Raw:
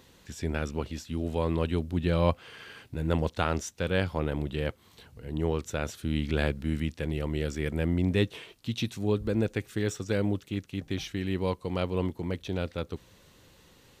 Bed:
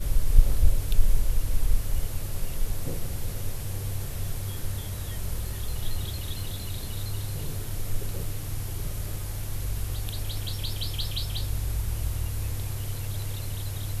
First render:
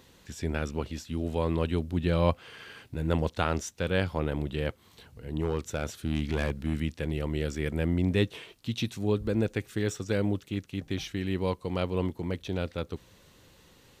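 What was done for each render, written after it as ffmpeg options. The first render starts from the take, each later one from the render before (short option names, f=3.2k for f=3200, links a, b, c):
-filter_complex "[0:a]asettb=1/sr,asplit=3[a][b][c];[a]atrim=end=5.414[d];[b]atrim=start=5.41:end=6.77,asetpts=PTS-STARTPTS,afade=t=in:d=0.004:c=qsin,afade=t=out:st=1.356:d=0.004:c=qsin,volume=20.5dB,asoftclip=hard,volume=-20.5dB[e];[c]atrim=start=6.766[f];[d][e]acrossfade=d=0.004:c1=hsin:c2=qsin[g];[g][f]acrossfade=d=0.004:c1=qsin:c2=hsin"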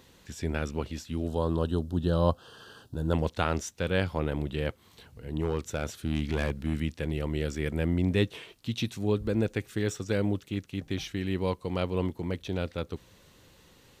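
-filter_complex "[0:a]asettb=1/sr,asplit=3[a][b][c];[a]atrim=end=1.274[d];[b]atrim=start=1.27:end=3.13,asetpts=PTS-STARTPTS,afade=t=in:d=0.004:c=qsin,afade=t=out:st=1.856:d=0.004:c=qsin,asuperstop=centerf=2200:order=4:qfactor=1.4[e];[c]atrim=start=3.126[f];[d][e]acrossfade=d=0.004:c1=hsin:c2=qsin[g];[g][f]acrossfade=d=0.004:c1=qsin:c2=hsin"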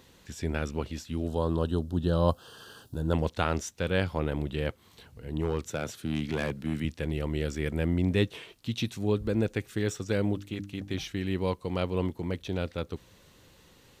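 -filter_complex "[0:a]asettb=1/sr,asplit=3[a][b][c];[a]atrim=end=2.284[d];[b]atrim=start=2.28:end=2.98,asetpts=PTS-STARTPTS,afade=t=in:d=0.004:c=qsin,afade=t=out:st=0.696:d=0.004:c=qsin,highshelf=f=7.1k:g=10[e];[c]atrim=start=2.976[f];[d][e]acrossfade=d=0.004:c1=hsin:c2=qsin[g];[g][f]acrossfade=d=0.004:c1=qsin:c2=hsin,asettb=1/sr,asplit=3[h][i][j];[h]atrim=end=5.694[k];[i]atrim=start=5.69:end=6.85,asetpts=PTS-STARTPTS,afade=t=in:d=0.004:c=qsin,afade=t=out:st=1.156:d=0.004:c=qsin,highpass=f=96:w=0.5412,highpass=f=96:w=1.3066[l];[j]atrim=start=6.846[m];[k][l]acrossfade=d=0.004:c1=hsin:c2=qsin[n];[n][m]acrossfade=d=0.004:c1=qsin:c2=hsin,asettb=1/sr,asplit=3[o][p][q];[o]atrim=end=10.334[r];[p]atrim=start=10.33:end=10.94,asetpts=PTS-STARTPTS,afade=t=in:d=0.004:c=qsin,afade=t=out:st=0.606:d=0.004:c=qsin,bandreject=f=50:t=h:w=6,bandreject=f=100:t=h:w=6,bandreject=f=150:t=h:w=6,bandreject=f=200:t=h:w=6,bandreject=f=250:t=h:w=6,bandreject=f=300:t=h:w=6,bandreject=f=350:t=h:w=6[s];[q]atrim=start=10.936[t];[r][s]acrossfade=d=0.004:c1=hsin:c2=qsin[u];[u][t]acrossfade=d=0.004:c1=qsin:c2=hsin"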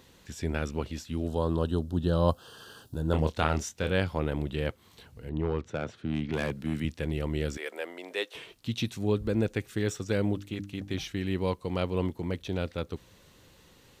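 -filter_complex "[0:a]asettb=1/sr,asplit=3[a][b][c];[a]atrim=end=3.114[d];[b]atrim=start=3.11:end=3.92,asetpts=PTS-STARTPTS,afade=t=in:d=0.004:c=qsin,afade=t=out:st=0.806:d=0.004:c=qsin,asplit=2[e][f];[f]adelay=26,volume=-7dB[g];[e][g]amix=inputs=2:normalize=0,atrim=end_sample=35721[h];[c]atrim=start=3.916[i];[d][h]acrossfade=d=0.004:c1=hsin:c2=qsin[j];[j][i]acrossfade=d=0.004:c1=qsin:c2=hsin,asettb=1/sr,asplit=3[k][l][m];[k]atrim=end=5.294[n];[l]atrim=start=5.29:end=6.33,asetpts=PTS-STARTPTS,afade=t=in:d=0.004:c=qsin,afade=t=out:st=1.036:d=0.004:c=qsin,adynamicsmooth=sensitivity=1.5:basefreq=2.9k[o];[m]atrim=start=6.326[p];[n][o]acrossfade=d=0.004:c1=hsin:c2=qsin[q];[q][p]acrossfade=d=0.004:c1=qsin:c2=hsin,asettb=1/sr,asplit=3[r][s][t];[r]atrim=end=7.574[u];[s]atrim=start=7.57:end=8.35,asetpts=PTS-STARTPTS,afade=t=in:d=0.004:c=qsin,afade=t=out:st=0.776:d=0.004:c=qsin,highpass=f=470:w=0.5412,highpass=f=470:w=1.3066[v];[t]atrim=start=8.346[w];[u][v]acrossfade=d=0.004:c1=hsin:c2=qsin[x];[x][w]acrossfade=d=0.004:c1=qsin:c2=hsin"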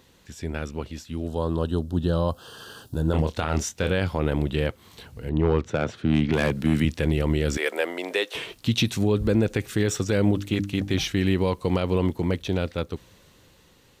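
-af "dynaudnorm=f=440:g=9:m=12.5dB,alimiter=limit=-11.5dB:level=0:latency=1:release=70"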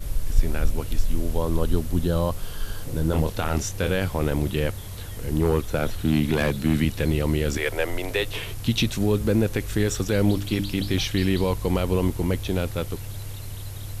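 -filter_complex "[1:a]volume=-2.5dB[a];[0:a][a]amix=inputs=2:normalize=0"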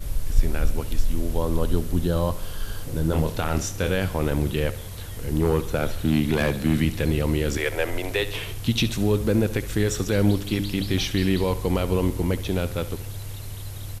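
-af "aecho=1:1:69|138|207|276|345:0.168|0.0907|0.049|0.0264|0.0143"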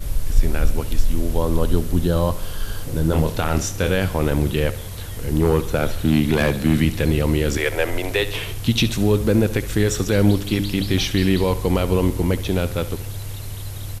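-af "volume=4dB,alimiter=limit=-2dB:level=0:latency=1"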